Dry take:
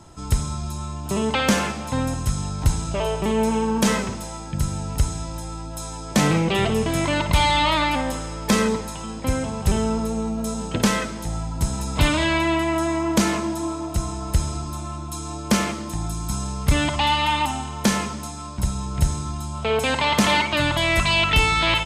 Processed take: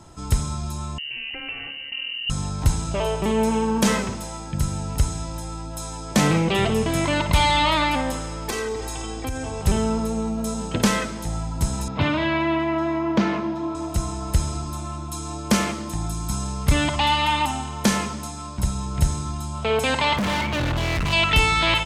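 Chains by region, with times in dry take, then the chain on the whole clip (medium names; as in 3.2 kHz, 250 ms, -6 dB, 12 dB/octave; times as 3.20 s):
0.98–2.30 s: FFT filter 140 Hz 0 dB, 320 Hz -17 dB, 640 Hz -9 dB, 1.6 kHz -16 dB, 3.7 kHz 0 dB + compression 2:1, threshold -30 dBFS + frequency inversion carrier 2.9 kHz
8.49–9.62 s: comb 2.6 ms, depth 97% + compression 4:1, threshold -25 dBFS
11.88–13.75 s: high-pass 89 Hz 24 dB/octave + distance through air 250 m
20.16–21.13 s: tone controls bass +10 dB, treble -10 dB + overload inside the chain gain 21.5 dB
whole clip: none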